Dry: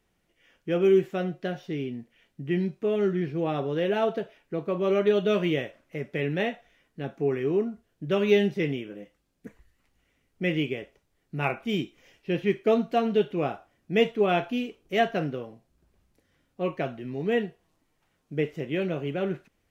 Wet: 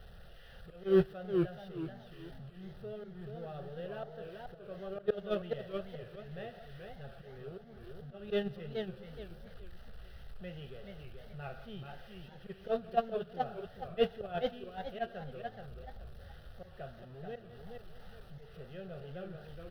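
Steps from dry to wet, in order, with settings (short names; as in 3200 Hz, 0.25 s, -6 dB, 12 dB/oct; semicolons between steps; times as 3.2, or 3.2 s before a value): zero-crossing step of -32 dBFS; echo 0.172 s -16 dB; gate -18 dBFS, range -23 dB; LPF 2700 Hz 6 dB/oct; low shelf 93 Hz +10.5 dB; in parallel at -7.5 dB: soft clip -22.5 dBFS, distortion -8 dB; on the sum: auto swell 0.185 s; fixed phaser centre 1500 Hz, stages 8; warbling echo 0.427 s, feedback 30%, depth 169 cents, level -5 dB; gain +4 dB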